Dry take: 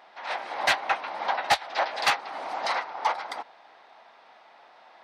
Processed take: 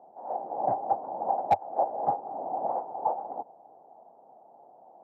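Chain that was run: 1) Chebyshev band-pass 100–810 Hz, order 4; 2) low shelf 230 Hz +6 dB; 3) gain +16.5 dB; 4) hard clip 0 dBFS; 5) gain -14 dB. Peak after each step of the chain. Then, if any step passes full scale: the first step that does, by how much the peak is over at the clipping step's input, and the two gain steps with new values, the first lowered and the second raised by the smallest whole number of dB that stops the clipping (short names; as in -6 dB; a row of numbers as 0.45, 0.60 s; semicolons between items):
-13.5, -13.0, +3.5, 0.0, -14.0 dBFS; step 3, 3.5 dB; step 3 +12.5 dB, step 5 -10 dB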